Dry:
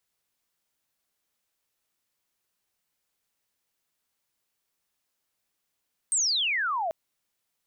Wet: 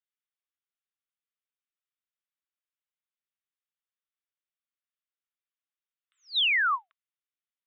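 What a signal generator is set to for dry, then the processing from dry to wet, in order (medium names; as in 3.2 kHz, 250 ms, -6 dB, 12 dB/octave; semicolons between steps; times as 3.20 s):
sweep logarithmic 8.7 kHz -> 620 Hz -21.5 dBFS -> -26 dBFS 0.79 s
gate with hold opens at -24 dBFS; Chebyshev band-pass 1.1–3.7 kHz, order 5; in parallel at +1.5 dB: peak limiter -32 dBFS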